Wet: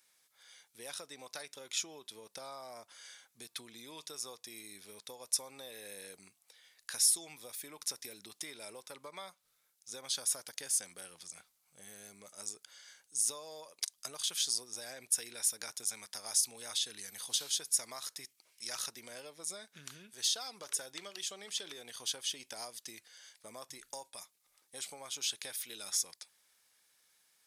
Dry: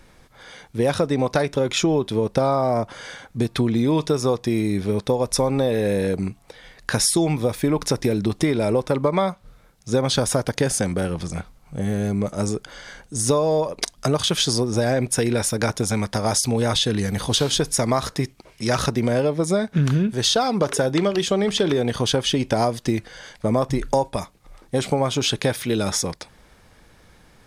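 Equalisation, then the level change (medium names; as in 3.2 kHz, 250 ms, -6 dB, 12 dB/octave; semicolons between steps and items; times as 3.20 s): differentiator; -7.5 dB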